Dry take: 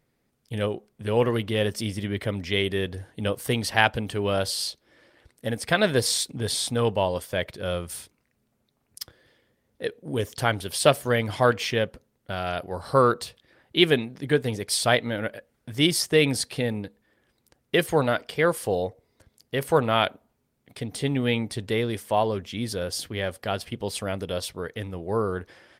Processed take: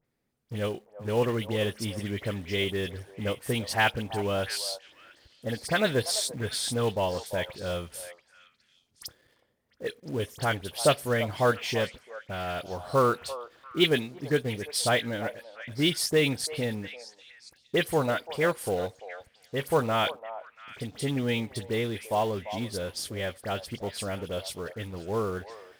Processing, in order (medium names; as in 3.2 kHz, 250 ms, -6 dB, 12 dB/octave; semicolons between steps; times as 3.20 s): phase dispersion highs, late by 50 ms, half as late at 2.7 kHz; in parallel at -7 dB: companded quantiser 4-bit; on the sum: repeats whose band climbs or falls 341 ms, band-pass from 740 Hz, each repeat 1.4 oct, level -10 dB; trim -7 dB